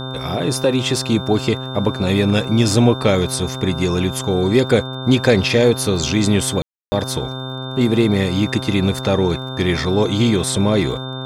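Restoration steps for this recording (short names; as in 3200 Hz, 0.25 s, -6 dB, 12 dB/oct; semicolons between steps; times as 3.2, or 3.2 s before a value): de-click; de-hum 130.5 Hz, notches 12; notch 3600 Hz, Q 30; room tone fill 6.62–6.92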